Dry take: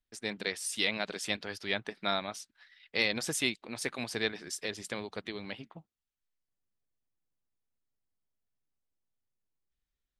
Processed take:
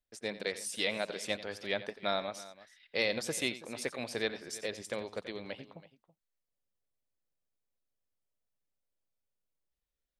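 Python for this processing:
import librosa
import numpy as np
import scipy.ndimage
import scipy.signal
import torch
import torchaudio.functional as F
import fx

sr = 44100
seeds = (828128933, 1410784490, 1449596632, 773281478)

y = fx.peak_eq(x, sr, hz=550.0, db=8.5, octaves=0.58)
y = fx.echo_multitap(y, sr, ms=(88, 328), db=(-15.0, -18.0))
y = y * librosa.db_to_amplitude(-3.5)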